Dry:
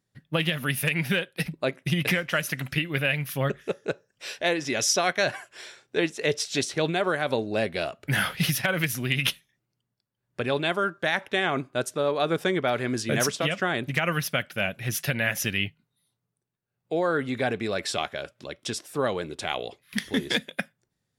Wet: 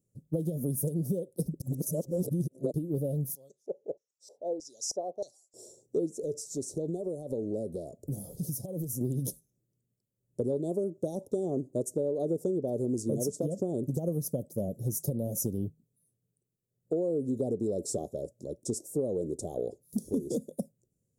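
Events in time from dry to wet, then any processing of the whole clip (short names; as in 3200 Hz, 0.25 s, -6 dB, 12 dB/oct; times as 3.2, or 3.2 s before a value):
1.6–2.74 reverse
3.35–5.54 LFO band-pass square 1.6 Hz 790–4700 Hz
6.12–9.01 compressor 4:1, threshold -32 dBFS
whole clip: elliptic band-stop 520–7000 Hz, stop band 70 dB; dynamic EQ 330 Hz, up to +4 dB, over -39 dBFS, Q 0.81; compressor, threshold -29 dBFS; gain +2 dB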